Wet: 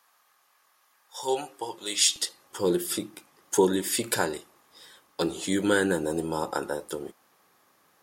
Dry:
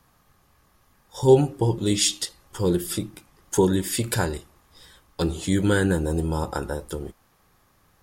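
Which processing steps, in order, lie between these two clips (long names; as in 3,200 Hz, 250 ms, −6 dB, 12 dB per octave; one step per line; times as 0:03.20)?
high-pass filter 840 Hz 12 dB per octave, from 0:02.16 280 Hz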